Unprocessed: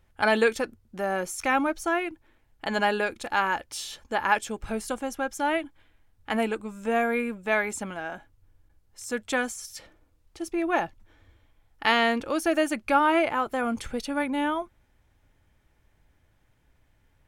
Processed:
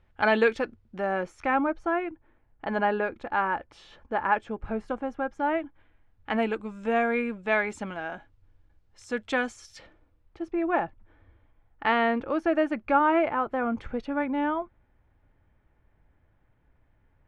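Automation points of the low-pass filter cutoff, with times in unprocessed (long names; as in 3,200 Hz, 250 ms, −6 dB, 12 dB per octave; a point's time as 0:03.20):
0:00.98 3,200 Hz
0:01.61 1,600 Hz
0:05.55 1,600 Hz
0:06.64 3,900 Hz
0:09.76 3,900 Hz
0:10.45 1,800 Hz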